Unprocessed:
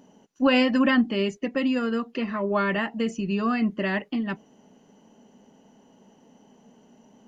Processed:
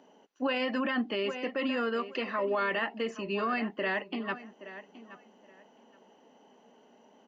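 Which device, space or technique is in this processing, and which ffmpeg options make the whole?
DJ mixer with the lows and highs turned down: -filter_complex "[0:a]asettb=1/sr,asplit=3[a][b][c];[a]atrim=end=1.964[d];[b]atrim=start=1.96:end=2.82,asetpts=PTS-STARTPTS,afade=t=in:d=0.004:c=qsin,afade=t=out:st=0.856:d=0.004:c=qsin,bass=f=250:g=-2,treble=f=4k:g=7[e];[c]atrim=start=2.816[f];[d][e]acrossfade=d=0.004:c1=hsin:c2=qsin[g];[g][f]acrossfade=d=0.004:c1=qsin:c2=hsin,acrossover=split=310 4800:gain=0.112 1 0.158[h][i][j];[h][i][j]amix=inputs=3:normalize=0,asplit=2[k][l];[l]adelay=822,lowpass=f=3.5k:p=1,volume=-16dB,asplit=2[m][n];[n]adelay=822,lowpass=f=3.5k:p=1,volume=0.21[o];[k][m][o]amix=inputs=3:normalize=0,alimiter=limit=-22dB:level=0:latency=1:release=22"

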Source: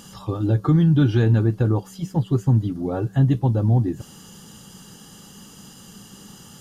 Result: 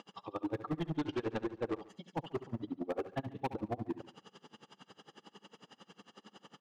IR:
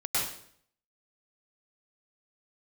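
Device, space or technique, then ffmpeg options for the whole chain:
helicopter radio: -filter_complex "[0:a]highpass=380,lowpass=2.9k,highshelf=f=6.8k:g=-8,aeval=exprs='val(0)*pow(10,-37*(0.5-0.5*cos(2*PI*11*n/s))/20)':c=same,asoftclip=type=hard:threshold=-31.5dB,asettb=1/sr,asplit=3[a][b][c];[a]atrim=end=0.844[d];[b]atrim=start=0.84:end=1.86,asetpts=PTS-STARTPTS,afade=t=in:d=0.004:c=qsin,afade=t=out:st=1.016:d=0.004:c=qsin,lowpass=f=7.8k:w=0.5412,lowpass=f=7.8k:w=1.3066[e];[c]atrim=start=1.856[f];[d][e]acrossfade=d=0.004:c1=hsin:c2=qsin[g];[g][f]acrossfade=d=0.004:c1=qsin:c2=hsin,equalizer=f=1.5k:w=5.3:g=-5,aecho=1:1:71|142|213:0.224|0.0739|0.0244,volume=1.5dB"

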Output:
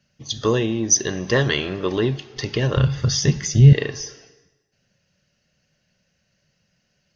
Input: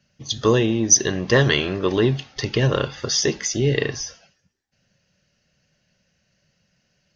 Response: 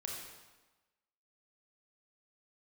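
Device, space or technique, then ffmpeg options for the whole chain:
compressed reverb return: -filter_complex "[0:a]asplit=2[a][b];[1:a]atrim=start_sample=2205[c];[b][c]afir=irnorm=-1:irlink=0,acompressor=threshold=-25dB:ratio=6,volume=-9dB[d];[a][d]amix=inputs=2:normalize=0,asettb=1/sr,asplit=3[e][f][g];[e]atrim=end=2.774[h];[f]atrim=start=2.77:end=3.73,asetpts=PTS-STARTPTS,afade=t=in:d=0.004:c=qsin,afade=t=out:st=0.956:d=0.004:c=qsin,lowshelf=f=220:t=q:w=1.5:g=13[i];[g]atrim=start=3.726[j];[h][i]acrossfade=d=0.004:c1=hsin:c2=qsin[k];[k][j]acrossfade=d=0.004:c1=qsin:c2=hsin,volume=-3dB"

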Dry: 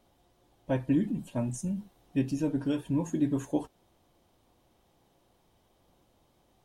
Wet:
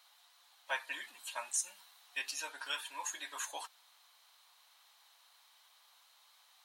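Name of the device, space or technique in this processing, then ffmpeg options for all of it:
headphones lying on a table: -af "highpass=f=1.1k:w=0.5412,highpass=f=1.1k:w=1.3066,equalizer=f=4.1k:t=o:w=0.22:g=8.5,volume=8.5dB"

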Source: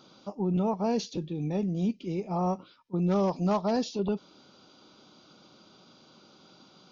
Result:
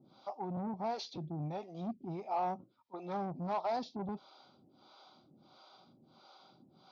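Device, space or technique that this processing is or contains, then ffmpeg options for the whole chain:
guitar amplifier with harmonic tremolo: -filter_complex "[0:a]acrossover=split=440[a][b];[a]aeval=exprs='val(0)*(1-1/2+1/2*cos(2*PI*1.5*n/s))':c=same[c];[b]aeval=exprs='val(0)*(1-1/2-1/2*cos(2*PI*1.5*n/s))':c=same[d];[c][d]amix=inputs=2:normalize=0,asoftclip=type=tanh:threshold=-32.5dB,highpass=84,equalizer=f=190:t=q:w=4:g=-6,equalizer=f=300:t=q:w=4:g=-4,equalizer=f=460:t=q:w=4:g=-8,equalizer=f=770:t=q:w=4:g=7,equalizer=f=1.7k:t=q:w=4:g=-8,equalizer=f=2.8k:t=q:w=4:g=-9,lowpass=f=4.5k:w=0.5412,lowpass=f=4.5k:w=1.3066,volume=1.5dB"

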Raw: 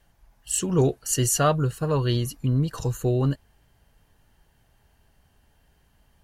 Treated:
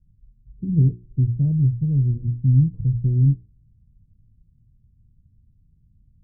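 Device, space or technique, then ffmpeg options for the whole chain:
the neighbour's flat through the wall: -af "lowpass=f=210:w=0.5412,lowpass=f=210:w=1.3066,equalizer=f=110:t=o:w=0.5:g=6.5,bandreject=f=60:t=h:w=6,bandreject=f=120:t=h:w=6,bandreject=f=180:t=h:w=6,bandreject=f=240:t=h:w=6,bandreject=f=300:t=h:w=6,bandreject=f=360:t=h:w=6,bandreject=f=420:t=h:w=6,volume=5.5dB"

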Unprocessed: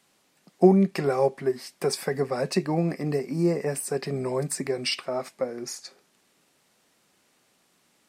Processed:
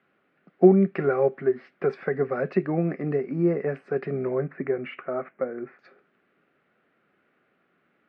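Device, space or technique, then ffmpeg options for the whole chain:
bass cabinet: -filter_complex "[0:a]highpass=74,equalizer=f=110:t=q:w=4:g=-4,equalizer=f=390:t=q:w=4:g=3,equalizer=f=930:t=q:w=4:g=-10,equalizer=f=1.4k:t=q:w=4:g=7,lowpass=f=2.3k:w=0.5412,lowpass=f=2.3k:w=1.3066,asettb=1/sr,asplit=3[a][b][c];[a]atrim=end=4.274[d];[b]atrim=start=4.27:end=5.79,asetpts=PTS-STARTPTS,afade=t=in:d=0.004:c=qsin,afade=t=out:st=1.516:d=0.004:c=qsin,lowpass=f=2.4k:w=0.5412,lowpass=f=2.4k:w=1.3066[e];[c]atrim=start=5.786[f];[d][e]acrossfade=d=0.004:c1=hsin:c2=qsin[g];[g][f]acrossfade=d=0.004:c1=qsin:c2=hsin"

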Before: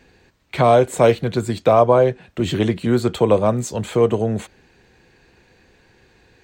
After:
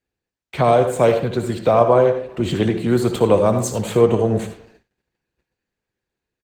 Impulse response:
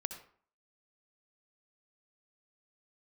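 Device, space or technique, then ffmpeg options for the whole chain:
speakerphone in a meeting room: -filter_complex "[0:a]asettb=1/sr,asplit=3[a][b][c];[a]atrim=end=2.884[d];[b]atrim=start=2.88:end=3.92,asetpts=PTS-STARTPTS,afade=t=in:d=0.004:c=qsin,afade=t=out:st=1.036:d=0.004:c=qsin,highshelf=f=5.5k:g=6[e];[c]atrim=start=3.916[f];[d][e]acrossfade=d=0.004:c1=hsin:c2=qsin[g];[g][f]acrossfade=d=0.004:c1=qsin:c2=hsin[h];[1:a]atrim=start_sample=2205[i];[h][i]afir=irnorm=-1:irlink=0,asplit=2[j][k];[k]adelay=390,highpass=300,lowpass=3.4k,asoftclip=type=hard:threshold=-10dB,volume=-28dB[l];[j][l]amix=inputs=2:normalize=0,dynaudnorm=f=290:g=11:m=13.5dB,agate=range=-29dB:threshold=-46dB:ratio=16:detection=peak" -ar 48000 -c:a libopus -b:a 20k

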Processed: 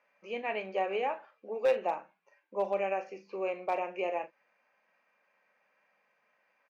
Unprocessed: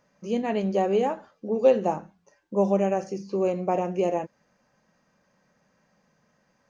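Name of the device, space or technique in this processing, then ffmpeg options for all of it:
megaphone: -filter_complex "[0:a]highpass=610,lowpass=2.7k,equalizer=f=2.4k:t=o:w=0.44:g=11.5,asoftclip=type=hard:threshold=-17.5dB,asplit=2[a][b];[b]adelay=42,volume=-13dB[c];[a][c]amix=inputs=2:normalize=0,volume=-3.5dB"

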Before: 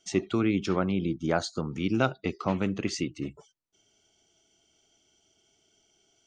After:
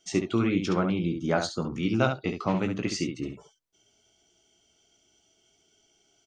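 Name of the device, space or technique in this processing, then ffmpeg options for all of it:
slapback doubling: -filter_complex "[0:a]asplit=3[a][b][c];[b]adelay=17,volume=-7dB[d];[c]adelay=69,volume=-7dB[e];[a][d][e]amix=inputs=3:normalize=0"

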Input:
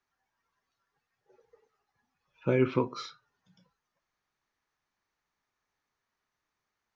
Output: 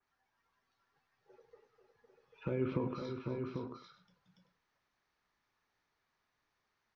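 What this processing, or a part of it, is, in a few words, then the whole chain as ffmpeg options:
de-esser from a sidechain: -filter_complex "[0:a]lowpass=f=5.7k:w=0.5412,lowpass=f=5.7k:w=1.3066,asplit=2[a][b];[b]highpass=f=5.1k:p=1,apad=whole_len=306896[c];[a][c]sidechaincompress=threshold=-53dB:ratio=10:attack=2.1:release=51,asettb=1/sr,asplit=3[d][e][f];[d]atrim=end=2.514[g];[e]atrim=start=2.51:end=3.05,asetpts=PTS-STARTPTS,afade=t=in:d=0.004:c=qsin,afade=t=out:st=0.536:d=0.004:c=qsin,tiltshelf=f=970:g=4[h];[f]atrim=start=3.046[i];[g][h]acrossfade=d=0.004:c1=hsin:c2=qsin[j];[j][i]acrossfade=d=0.004:c1=qsin:c2=hsin,aecho=1:1:103|250|508|793|893:0.141|0.237|0.398|0.501|0.119,adynamicequalizer=threshold=0.001:dfrequency=2700:dqfactor=0.7:tfrequency=2700:tqfactor=0.7:attack=5:release=100:ratio=0.375:range=2.5:mode=cutabove:tftype=highshelf,volume=1dB"

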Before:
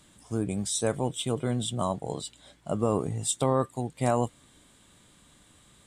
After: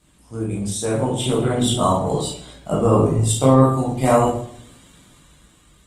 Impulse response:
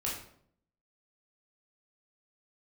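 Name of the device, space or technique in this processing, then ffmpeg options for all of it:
speakerphone in a meeting room: -filter_complex "[0:a]asettb=1/sr,asplit=3[a][b][c];[a]atrim=end=0.764[d];[b]atrim=start=0.76:end=2.16,asetpts=PTS-STARTPTS,afade=t=in:d=0.004:c=qsin,afade=t=out:st=1.396:d=0.004:c=qsin,bandreject=f=60:t=h:w=6,bandreject=f=120:t=h:w=6,bandreject=f=180:t=h:w=6[e];[c]atrim=start=2.156[f];[d][e]acrossfade=d=0.004:c1=hsin:c2=qsin[g];[g][f]acrossfade=d=0.004:c1=qsin:c2=hsin,asplit=3[h][i][j];[h]afade=t=out:st=2.85:d=0.02[k];[i]highshelf=f=3.7k:g=-4.5,afade=t=in:st=2.85:d=0.02,afade=t=out:st=3.58:d=0.02[l];[j]afade=t=in:st=3.58:d=0.02[m];[k][l][m]amix=inputs=3:normalize=0[n];[1:a]atrim=start_sample=2205[o];[n][o]afir=irnorm=-1:irlink=0,dynaudnorm=f=260:g=9:m=16dB,volume=-1dB" -ar 48000 -c:a libopus -b:a 20k

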